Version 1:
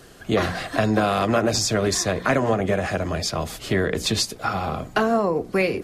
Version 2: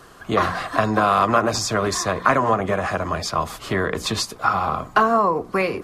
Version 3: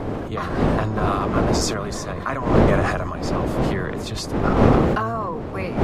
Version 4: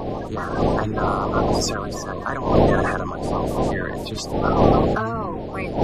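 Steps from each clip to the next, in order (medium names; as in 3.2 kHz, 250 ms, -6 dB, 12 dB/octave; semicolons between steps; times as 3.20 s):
peaking EQ 1.1 kHz +13.5 dB 0.76 oct; trim -2 dB
octave divider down 1 oct, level +3 dB; wind noise 440 Hz -14 dBFS; decay stretcher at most 29 dB/s; trim -9.5 dB
coarse spectral quantiser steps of 30 dB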